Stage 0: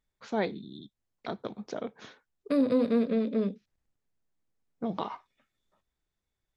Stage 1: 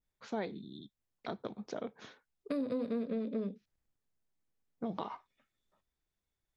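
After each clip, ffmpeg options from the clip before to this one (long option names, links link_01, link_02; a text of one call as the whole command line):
ffmpeg -i in.wav -af "acompressor=threshold=-29dB:ratio=4,adynamicequalizer=threshold=0.00398:dfrequency=1500:dqfactor=0.7:tfrequency=1500:tqfactor=0.7:attack=5:release=100:ratio=0.375:range=2:mode=cutabove:tftype=highshelf,volume=-3.5dB" out.wav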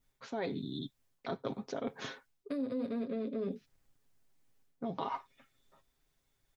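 ffmpeg -i in.wav -af "aecho=1:1:7.4:0.51,areverse,acompressor=threshold=-44dB:ratio=5,areverse,volume=9.5dB" out.wav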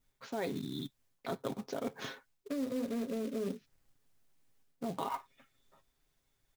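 ffmpeg -i in.wav -af "acrusher=bits=4:mode=log:mix=0:aa=0.000001" out.wav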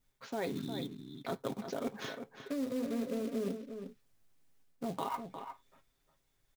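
ffmpeg -i in.wav -filter_complex "[0:a]asplit=2[link_01][link_02];[link_02]adelay=355.7,volume=-8dB,highshelf=frequency=4000:gain=-8[link_03];[link_01][link_03]amix=inputs=2:normalize=0" out.wav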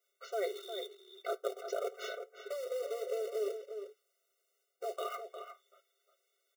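ffmpeg -i in.wav -af "afftfilt=real='re*eq(mod(floor(b*sr/1024/380),2),1)':imag='im*eq(mod(floor(b*sr/1024/380),2),1)':win_size=1024:overlap=0.75,volume=3.5dB" out.wav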